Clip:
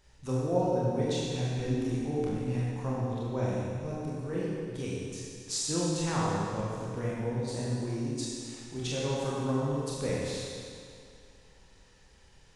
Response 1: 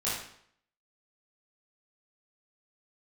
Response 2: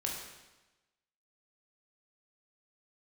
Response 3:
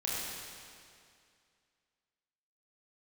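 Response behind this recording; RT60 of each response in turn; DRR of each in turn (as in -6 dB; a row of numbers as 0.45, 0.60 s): 3; 0.65, 1.1, 2.3 s; -9.5, -1.5, -6.5 dB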